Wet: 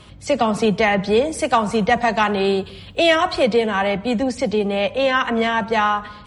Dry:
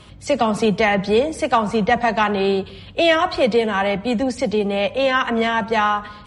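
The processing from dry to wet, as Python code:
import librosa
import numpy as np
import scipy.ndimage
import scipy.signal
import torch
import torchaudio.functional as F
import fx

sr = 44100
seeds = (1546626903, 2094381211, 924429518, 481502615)

y = fx.high_shelf(x, sr, hz=8700.0, db=12.0, at=(1.25, 3.43))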